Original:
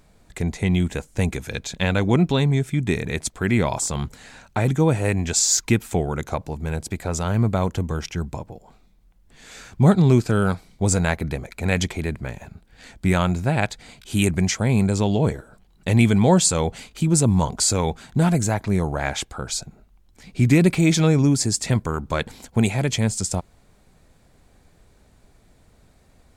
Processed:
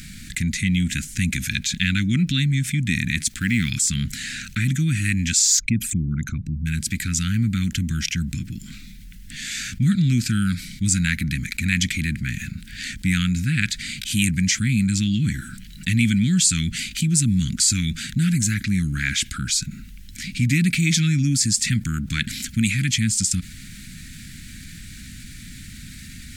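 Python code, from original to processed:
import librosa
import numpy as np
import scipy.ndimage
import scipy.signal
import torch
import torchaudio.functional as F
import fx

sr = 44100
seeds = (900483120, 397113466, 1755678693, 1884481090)

y = fx.law_mismatch(x, sr, coded='A', at=(3.24, 3.69), fade=0.02)
y = fx.envelope_sharpen(y, sr, power=2.0, at=(5.58, 6.65), fade=0.02)
y = scipy.signal.sosfilt(scipy.signal.cheby2(4, 50, [430.0, 990.0], 'bandstop', fs=sr, output='sos'), y)
y = fx.low_shelf(y, sr, hz=130.0, db=-10.0)
y = fx.env_flatten(y, sr, amount_pct=50)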